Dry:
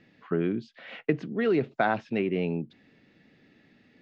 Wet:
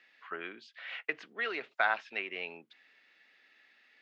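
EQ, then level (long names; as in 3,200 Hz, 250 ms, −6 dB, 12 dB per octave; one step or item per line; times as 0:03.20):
high-pass filter 1,400 Hz 12 dB per octave
high-shelf EQ 3,600 Hz −7.5 dB
+5.0 dB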